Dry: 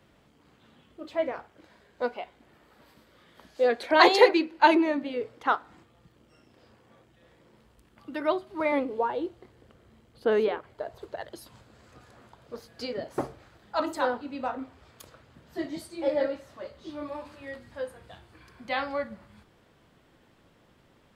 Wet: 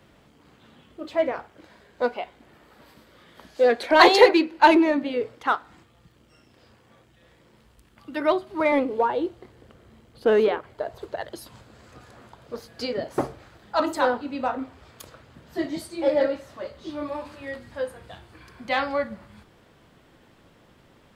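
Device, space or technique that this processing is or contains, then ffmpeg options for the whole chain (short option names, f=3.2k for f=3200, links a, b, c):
parallel distortion: -filter_complex "[0:a]asettb=1/sr,asplit=3[a][b][c];[a]atrim=end=5.354[d];[b]atrim=start=5.35:end=8.17,asetpts=PTS-STARTPTS,afade=t=in:d=0.004:c=qsin,afade=t=out:st=2.816:d=0.004:c=qsin,equalizer=f=430:w=0.34:g=-4.5[e];[c]atrim=start=8.166[f];[d][e]acrossfade=d=0.004:c1=hsin:c2=qsin[g];[g][f]acrossfade=d=0.004:c1=qsin:c2=hsin,asplit=2[h][i];[i]asoftclip=type=hard:threshold=-21dB,volume=-8dB[j];[h][j]amix=inputs=2:normalize=0,volume=2.5dB"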